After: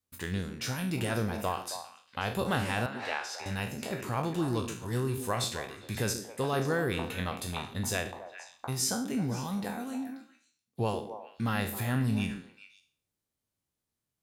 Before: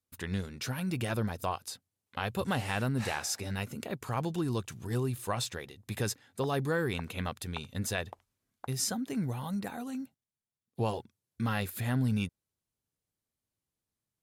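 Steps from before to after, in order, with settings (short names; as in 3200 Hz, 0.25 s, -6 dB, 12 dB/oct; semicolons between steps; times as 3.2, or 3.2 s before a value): spectral trails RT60 0.44 s; 2.86–3.46 three-band isolator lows -20 dB, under 500 Hz, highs -18 dB, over 4600 Hz; delay with a stepping band-pass 0.134 s, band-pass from 280 Hz, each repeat 1.4 oct, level -5 dB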